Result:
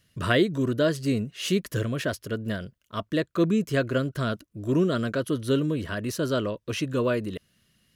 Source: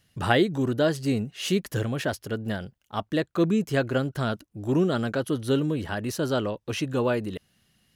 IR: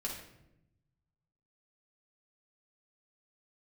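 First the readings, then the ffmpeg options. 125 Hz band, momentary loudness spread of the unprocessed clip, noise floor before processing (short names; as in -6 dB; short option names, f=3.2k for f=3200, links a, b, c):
0.0 dB, 8 LU, -71 dBFS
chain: -af "asuperstop=centerf=810:order=4:qfactor=3.4"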